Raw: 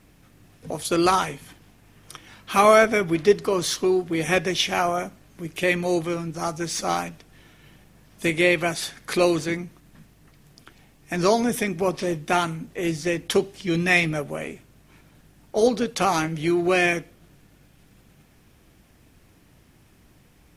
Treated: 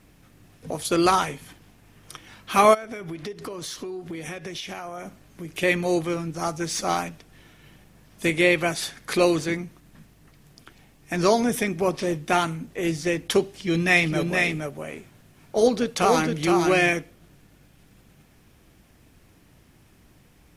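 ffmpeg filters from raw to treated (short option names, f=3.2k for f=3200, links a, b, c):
-filter_complex "[0:a]asplit=3[a][b][c];[a]afade=t=out:st=2.73:d=0.02[d];[b]acompressor=threshold=-30dB:ratio=16:attack=3.2:release=140:knee=1:detection=peak,afade=t=in:st=2.73:d=0.02,afade=t=out:st=5.47:d=0.02[e];[c]afade=t=in:st=5.47:d=0.02[f];[d][e][f]amix=inputs=3:normalize=0,asettb=1/sr,asplit=3[g][h][i];[g]atrim=end=13.594[j];[h]atrim=start=13.59:end=16.9,asetpts=PTS-STARTPTS,afade=t=in:d=0.004:c=qsin,afade=t=out:st=3.306:d=0.004:c=qsin,aecho=1:1:468:0.631,atrim=end_sample=145971[k];[i]atrim=start=16.896[l];[j][k]acrossfade=d=0.004:c1=hsin:c2=qsin[m];[m][l]acrossfade=d=0.004:c1=qsin:c2=hsin"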